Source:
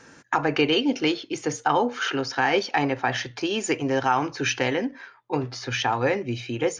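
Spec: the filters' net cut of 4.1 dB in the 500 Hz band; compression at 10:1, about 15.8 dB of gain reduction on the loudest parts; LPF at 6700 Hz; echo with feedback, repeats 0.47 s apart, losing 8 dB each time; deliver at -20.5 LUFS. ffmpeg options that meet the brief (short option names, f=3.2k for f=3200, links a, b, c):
-af "lowpass=6.7k,equalizer=f=500:t=o:g=-5,acompressor=threshold=-35dB:ratio=10,aecho=1:1:470|940|1410|1880|2350:0.398|0.159|0.0637|0.0255|0.0102,volume=18dB"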